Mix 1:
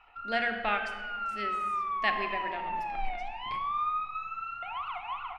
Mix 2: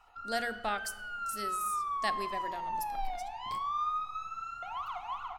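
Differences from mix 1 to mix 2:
speech: send -10.5 dB; master: remove synth low-pass 2500 Hz, resonance Q 3.4

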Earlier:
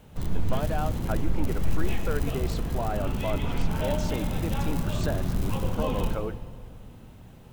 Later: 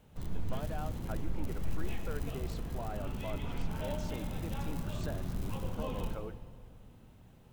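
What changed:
speech -11.0 dB; background -9.5 dB

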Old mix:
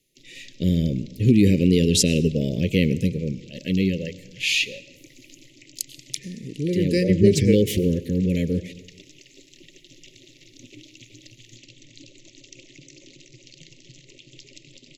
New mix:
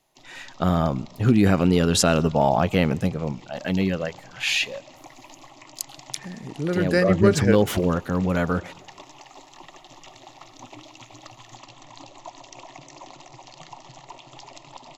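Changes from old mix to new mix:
speech: send -10.0 dB; master: remove inverse Chebyshev band-stop 700–1500 Hz, stop band 40 dB

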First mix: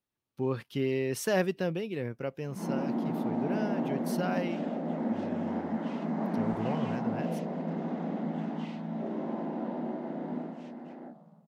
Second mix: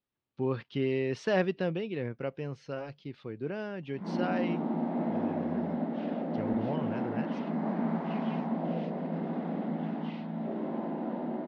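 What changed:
background: entry +1.45 s; master: add LPF 4500 Hz 24 dB/oct

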